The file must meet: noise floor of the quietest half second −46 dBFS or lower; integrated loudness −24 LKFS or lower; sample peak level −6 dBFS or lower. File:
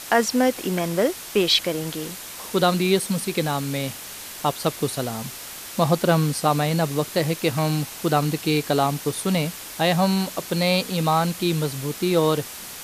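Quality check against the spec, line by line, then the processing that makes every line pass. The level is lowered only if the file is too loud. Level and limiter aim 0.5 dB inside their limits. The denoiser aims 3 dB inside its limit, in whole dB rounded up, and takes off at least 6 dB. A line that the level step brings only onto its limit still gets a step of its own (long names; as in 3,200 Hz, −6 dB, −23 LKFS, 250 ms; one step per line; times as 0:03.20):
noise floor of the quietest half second −37 dBFS: out of spec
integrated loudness −22.5 LKFS: out of spec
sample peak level −5.0 dBFS: out of spec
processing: broadband denoise 10 dB, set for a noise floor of −37 dBFS
level −2 dB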